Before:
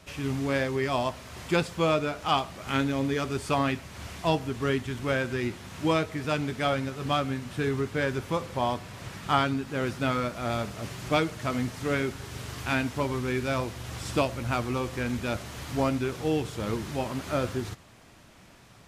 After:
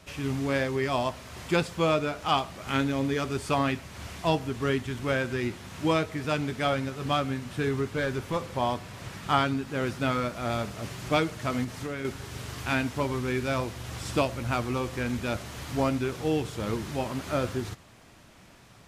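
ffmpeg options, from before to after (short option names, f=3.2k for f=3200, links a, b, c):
-filter_complex "[0:a]asettb=1/sr,asplit=3[a][b][c];[a]atrim=end=7.904[d];[b]atrim=start=7.9:end=8.36,asetpts=PTS-STARTPTS,afade=t=in:d=0.004:c=qsin,afade=t=out:st=0.456:d=0.004:c=qsin,aeval=exprs='clip(val(0),-1,0.075)':c=same[e];[c]atrim=start=8.356[f];[d][e]acrossfade=d=0.004:c1=hsin:c2=qsin[g];[g][f]acrossfade=d=0.004:c1=qsin:c2=hsin,asettb=1/sr,asplit=3[h][i][j];[h]atrim=end=11.644[k];[i]atrim=start=11.64:end=12.05,asetpts=PTS-STARTPTS,afade=t=in:d=0.004:c=qsin,afade=t=out:st=0.406:d=0.004:c=qsin,acompressor=threshold=-30dB:ratio=4:attack=3.2:release=140:knee=1:detection=peak[l];[j]atrim=start=12.046[m];[k][l]acrossfade=d=0.004:c1=hsin:c2=qsin[n];[n][m]acrossfade=d=0.004:c1=qsin:c2=hsin"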